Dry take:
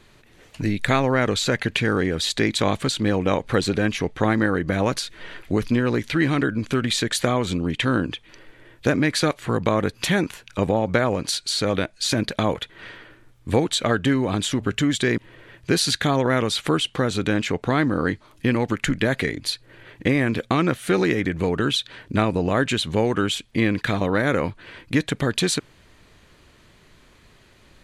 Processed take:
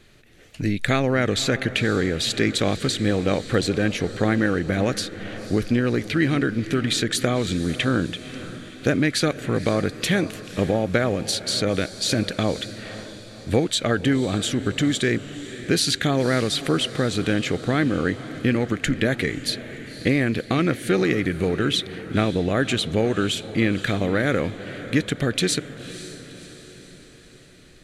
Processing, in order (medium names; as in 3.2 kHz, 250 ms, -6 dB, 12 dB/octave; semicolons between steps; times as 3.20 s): peaking EQ 970 Hz -11 dB 0.44 oct; on a send: echo that smears into a reverb 531 ms, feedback 53%, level -14 dB